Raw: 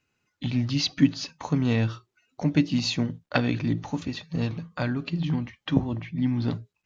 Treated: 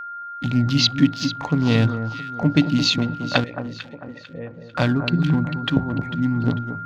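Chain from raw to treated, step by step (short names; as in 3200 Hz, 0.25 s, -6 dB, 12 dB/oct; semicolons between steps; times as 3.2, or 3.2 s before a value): Wiener smoothing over 15 samples; AGC gain up to 13.5 dB; whine 1400 Hz -31 dBFS; in parallel at -3 dB: compressor, threshold -30 dBFS, peak gain reduction 21.5 dB; on the sum: dynamic EQ 3500 Hz, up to +7 dB, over -39 dBFS, Q 1.8; 3.44–4.75 vocal tract filter e; on a send: echo with dull and thin repeats by turns 0.223 s, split 1400 Hz, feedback 60%, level -9 dB; on the sum: gain -4 dB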